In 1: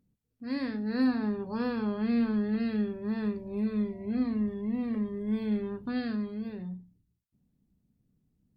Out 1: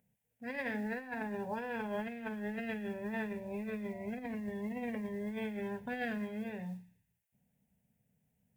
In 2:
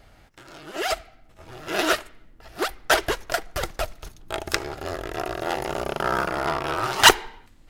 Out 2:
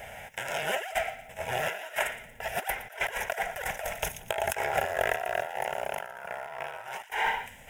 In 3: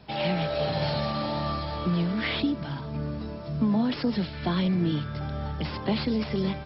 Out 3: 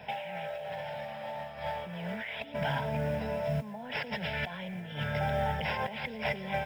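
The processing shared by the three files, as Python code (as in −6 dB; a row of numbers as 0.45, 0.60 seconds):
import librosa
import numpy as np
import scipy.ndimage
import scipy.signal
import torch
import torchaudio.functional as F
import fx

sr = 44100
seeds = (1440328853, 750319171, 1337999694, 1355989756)

p1 = fx.highpass(x, sr, hz=400.0, slope=6)
p2 = fx.dynamic_eq(p1, sr, hz=1200.0, q=0.79, threshold_db=-40.0, ratio=4.0, max_db=5)
p3 = fx.over_compress(p2, sr, threshold_db=-38.0, ratio=-1.0)
p4 = fx.fixed_phaser(p3, sr, hz=1200.0, stages=6)
p5 = fx.mod_noise(p4, sr, seeds[0], snr_db=31)
p6 = p5 + fx.echo_wet_highpass(p5, sr, ms=116, feedback_pct=43, hz=2300.0, wet_db=-15, dry=0)
y = F.gain(torch.from_numpy(p6), 5.5).numpy()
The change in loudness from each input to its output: −8.5, −8.0, −6.5 LU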